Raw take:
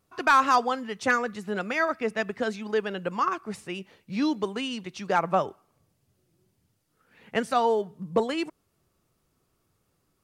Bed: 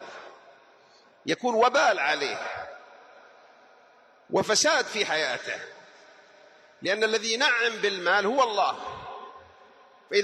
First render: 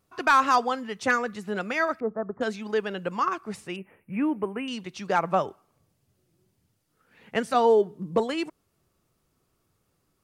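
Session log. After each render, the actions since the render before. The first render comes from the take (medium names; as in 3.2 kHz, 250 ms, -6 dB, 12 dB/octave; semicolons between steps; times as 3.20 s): 2.00–2.41 s: elliptic low-pass 1.3 kHz, stop band 60 dB; 3.76–4.68 s: elliptic band-stop 2.5–9.5 kHz; 7.54–8.15 s: peaking EQ 340 Hz +11.5 dB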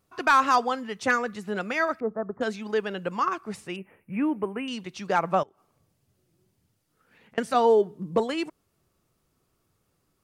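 5.43–7.38 s: compression, threshold -54 dBFS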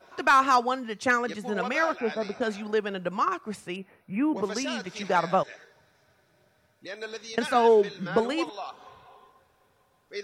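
add bed -13 dB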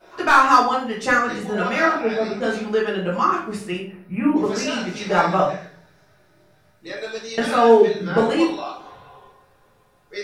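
simulated room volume 52 m³, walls mixed, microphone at 1.3 m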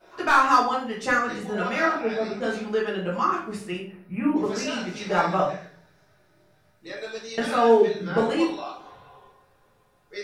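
trim -4.5 dB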